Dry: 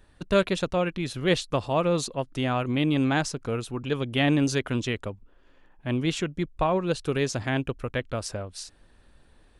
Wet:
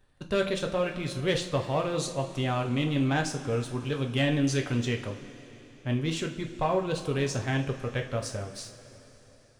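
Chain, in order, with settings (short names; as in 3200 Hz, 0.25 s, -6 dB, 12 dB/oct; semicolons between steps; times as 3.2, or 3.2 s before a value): sample leveller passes 1; two-slope reverb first 0.33 s, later 4 s, from -18 dB, DRR 2.5 dB; gain -7.5 dB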